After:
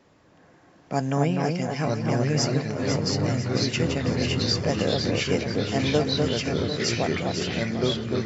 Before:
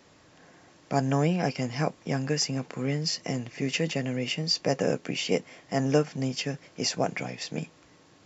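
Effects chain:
delay that swaps between a low-pass and a high-pass 249 ms, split 1,700 Hz, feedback 66%, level −3.5 dB
delay with pitch and tempo change per echo 757 ms, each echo −3 semitones, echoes 3
one half of a high-frequency compander decoder only

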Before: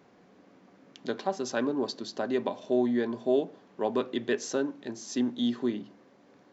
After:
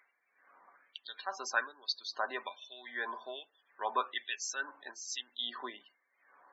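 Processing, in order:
spectral peaks only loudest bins 64
auto-filter high-pass sine 1.2 Hz 990–3,100 Hz

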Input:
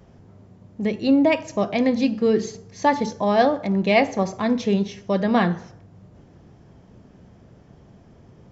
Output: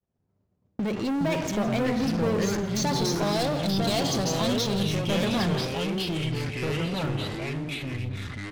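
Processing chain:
downward expander −36 dBFS
0:02.68–0:04.81: high shelf with overshoot 3,000 Hz +9 dB, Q 3
leveller curve on the samples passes 5
brickwall limiter −19 dBFS, peak gain reduction 16.5 dB
downward compressor 2 to 1, threshold −30 dBFS, peak gain reduction 5.5 dB
single-tap delay 166 ms −17 dB
delay with pitch and tempo change per echo 210 ms, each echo −4 semitones, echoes 3

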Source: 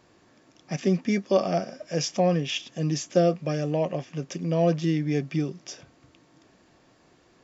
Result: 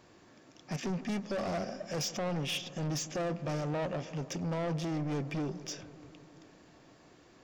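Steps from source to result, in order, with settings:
brickwall limiter −17.5 dBFS, peak gain reduction 9 dB
soft clipping −31 dBFS, distortion −7 dB
delay with a low-pass on its return 148 ms, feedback 76%, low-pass 1,500 Hz, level −16 dB

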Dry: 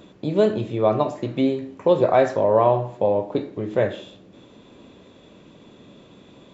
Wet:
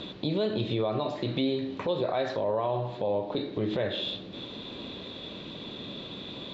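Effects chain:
downward compressor 3 to 1, threshold −31 dBFS, peak gain reduction 14.5 dB
brickwall limiter −25.5 dBFS, peak gain reduction 10 dB
low-pass with resonance 3,900 Hz, resonance Q 4.7
level +5.5 dB

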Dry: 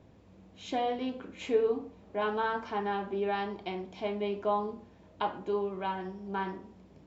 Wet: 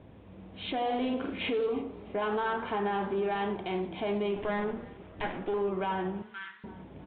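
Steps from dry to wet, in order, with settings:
0:04.36–0:05.54: lower of the sound and its delayed copy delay 0.37 ms
camcorder AGC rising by 5.7 dB per second
0:00.86–0:01.53: double-tracking delay 44 ms −3 dB
in parallel at −6 dB: hard clipping −32.5 dBFS, distortion −7 dB
on the sum: brickwall limiter −25.5 dBFS, peak gain reduction 9.5 dB
echo with shifted repeats 325 ms, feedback 48%, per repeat −35 Hz, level −21.5 dB
downsampling to 8,000 Hz
0:06.22–0:06.64: Chebyshev high-pass filter 1,400 Hz, order 4
feedback echo with a swinging delay time 87 ms, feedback 52%, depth 175 cents, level −16.5 dB
level +1.5 dB

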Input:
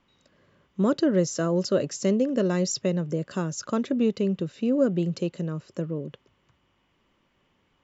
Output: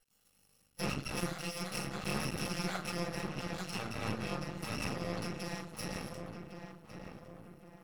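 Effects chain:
samples in bit-reversed order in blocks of 128 samples
0:01.11–0:03.30: high-shelf EQ 6,400 Hz +9.5 dB
treble cut that deepens with the level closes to 2,900 Hz, closed at −23 dBFS
feedback echo with a low-pass in the loop 1,106 ms, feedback 46%, low-pass 1,700 Hz, level −6.5 dB
convolution reverb RT60 0.35 s, pre-delay 5 ms, DRR −6.5 dB
half-wave rectification
low-shelf EQ 100 Hz −11 dB
notch filter 930 Hz, Q 13
level −8.5 dB

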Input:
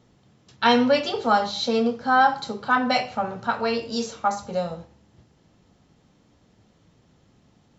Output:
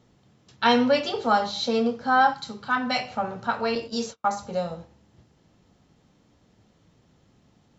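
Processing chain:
0:02.32–0:03.08: parametric band 530 Hz −12 dB → −4 dB 1.7 octaves
0:03.75–0:04.39: noise gate −33 dBFS, range −36 dB
level −1.5 dB

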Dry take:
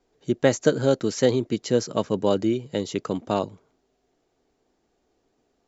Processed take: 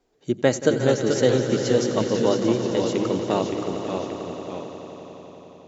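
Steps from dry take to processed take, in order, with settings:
delay with pitch and tempo change per echo 392 ms, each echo −1 semitone, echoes 2, each echo −6 dB
mains-hum notches 50/100/150/200 Hz
echo that builds up and dies away 89 ms, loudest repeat 5, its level −14 dB
Opus 128 kbit/s 48,000 Hz

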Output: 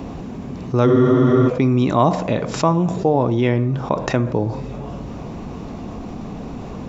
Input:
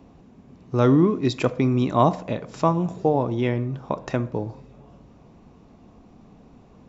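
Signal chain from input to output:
frozen spectrum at 0:00.89, 0.59 s
envelope flattener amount 50%
level +1 dB

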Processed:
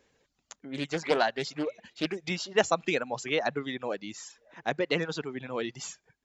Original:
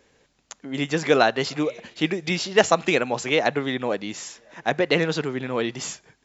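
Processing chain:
reverb reduction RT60 0.73 s
0:00.68–0:02.17: highs frequency-modulated by the lows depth 0.32 ms
level −7 dB

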